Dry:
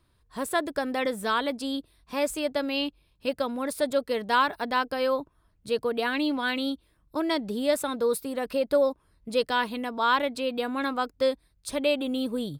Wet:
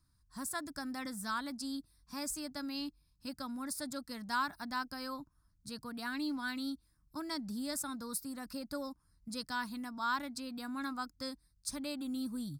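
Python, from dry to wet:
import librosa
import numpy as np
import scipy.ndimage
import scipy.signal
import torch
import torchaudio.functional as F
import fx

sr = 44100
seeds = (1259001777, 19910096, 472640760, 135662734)

y = fx.curve_eq(x, sr, hz=(180.0, 300.0, 420.0, 800.0, 1400.0, 3100.0, 5000.0, 12000.0), db=(0, -4, -23, -9, -3, -15, 6, 2))
y = F.gain(torch.from_numpy(y), -5.5).numpy()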